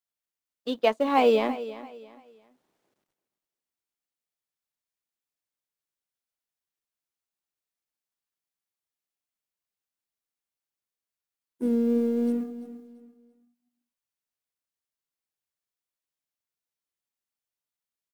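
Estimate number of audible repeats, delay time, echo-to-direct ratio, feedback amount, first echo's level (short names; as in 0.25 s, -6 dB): 2, 0.339 s, -14.5 dB, 31%, -15.0 dB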